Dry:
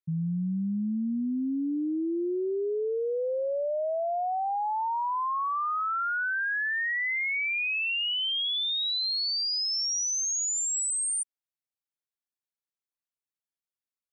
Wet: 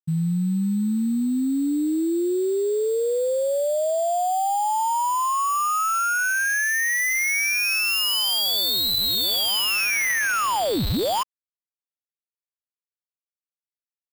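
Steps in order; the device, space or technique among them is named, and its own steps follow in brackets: early companding sampler (sample-rate reducer 8 kHz, jitter 0%; companded quantiser 8-bit); trim +6.5 dB

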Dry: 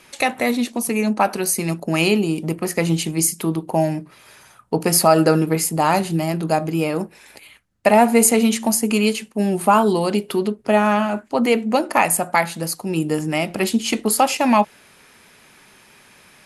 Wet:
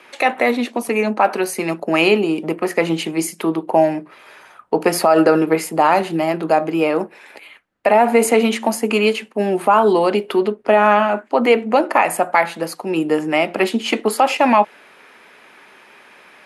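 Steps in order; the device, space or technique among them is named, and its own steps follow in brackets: DJ mixer with the lows and highs turned down (three-band isolator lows -20 dB, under 270 Hz, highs -15 dB, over 3.2 kHz; peak limiter -9.5 dBFS, peak gain reduction 7.5 dB); trim +6.5 dB

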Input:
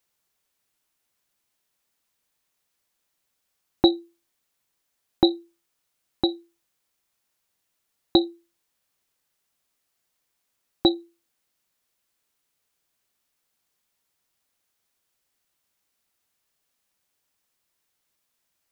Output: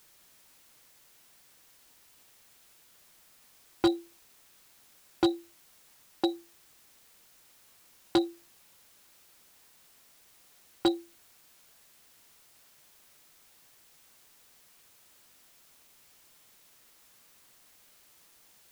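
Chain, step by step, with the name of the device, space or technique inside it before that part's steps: aircraft radio (band-pass 360–2500 Hz; hard clipper -18 dBFS, distortion -10 dB; white noise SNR 21 dB)

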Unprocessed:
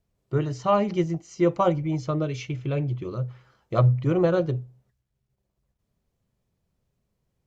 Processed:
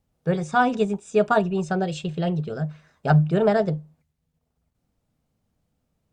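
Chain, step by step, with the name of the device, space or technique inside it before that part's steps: nightcore (tape speed +22%); trim +2 dB

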